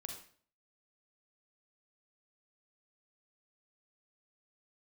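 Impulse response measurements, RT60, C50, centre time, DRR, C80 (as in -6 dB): 0.50 s, 4.5 dB, 28 ms, 2.0 dB, 9.0 dB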